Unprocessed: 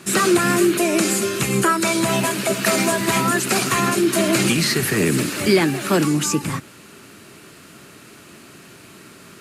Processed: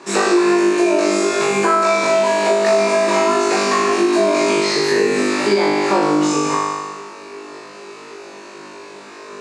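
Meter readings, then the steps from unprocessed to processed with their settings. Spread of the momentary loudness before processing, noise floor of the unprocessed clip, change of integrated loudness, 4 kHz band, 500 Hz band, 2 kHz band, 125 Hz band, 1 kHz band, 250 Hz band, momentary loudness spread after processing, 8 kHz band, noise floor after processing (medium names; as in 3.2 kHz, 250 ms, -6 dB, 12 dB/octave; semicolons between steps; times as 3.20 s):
3 LU, -45 dBFS, +2.5 dB, 0.0 dB, +6.5 dB, +1.0 dB, -9.0 dB, +5.5 dB, +1.0 dB, 20 LU, -4.0 dB, -37 dBFS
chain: cabinet simulation 400–7400 Hz, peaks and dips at 420 Hz +6 dB, 950 Hz +8 dB, 1.4 kHz -6 dB, 2 kHz -3 dB, 3.1 kHz -9 dB; on a send: flutter echo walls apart 3.4 m, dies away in 1.3 s; on the sum: compression 4:1, threshold -17 dBFS, peak gain reduction 9.5 dB; treble shelf 5.1 kHz -10 dB; trim +4.5 dB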